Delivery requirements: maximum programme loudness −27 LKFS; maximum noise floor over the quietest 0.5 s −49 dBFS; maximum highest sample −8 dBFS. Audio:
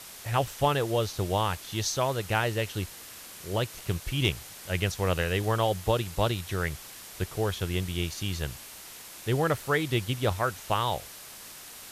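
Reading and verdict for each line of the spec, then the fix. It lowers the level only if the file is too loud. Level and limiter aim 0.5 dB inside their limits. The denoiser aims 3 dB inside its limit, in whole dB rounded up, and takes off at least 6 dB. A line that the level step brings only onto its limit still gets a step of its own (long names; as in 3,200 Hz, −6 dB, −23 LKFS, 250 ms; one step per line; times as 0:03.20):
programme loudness −29.5 LKFS: in spec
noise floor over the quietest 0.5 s −45 dBFS: out of spec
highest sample −12.0 dBFS: in spec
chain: broadband denoise 7 dB, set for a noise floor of −45 dBFS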